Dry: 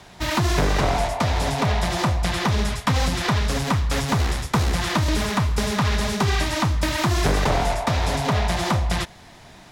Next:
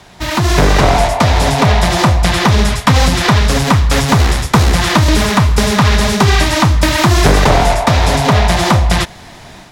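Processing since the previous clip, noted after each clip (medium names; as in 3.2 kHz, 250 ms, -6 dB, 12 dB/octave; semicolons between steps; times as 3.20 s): level rider gain up to 6 dB; trim +5 dB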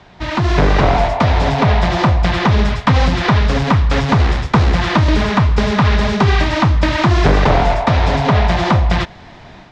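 distance through air 180 m; trim -2 dB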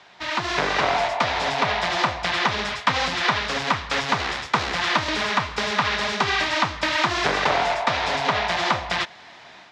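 high-pass 1.4 kHz 6 dB/octave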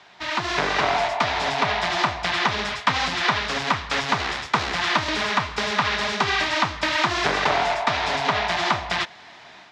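band-stop 520 Hz, Q 12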